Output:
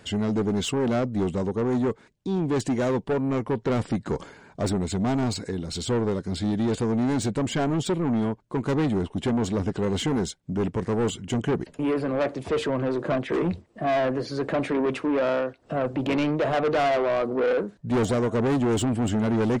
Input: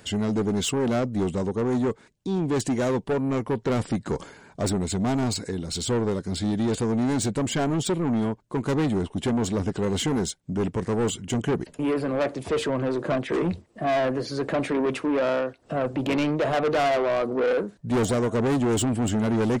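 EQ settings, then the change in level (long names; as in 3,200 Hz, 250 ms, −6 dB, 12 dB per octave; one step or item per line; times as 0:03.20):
high-shelf EQ 7,300 Hz −9.5 dB
0.0 dB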